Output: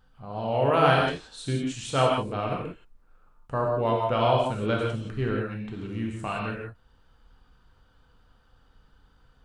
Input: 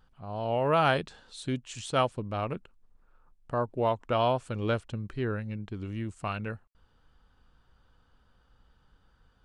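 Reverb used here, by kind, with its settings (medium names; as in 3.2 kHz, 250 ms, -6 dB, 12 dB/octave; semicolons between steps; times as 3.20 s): gated-style reverb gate 200 ms flat, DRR -2 dB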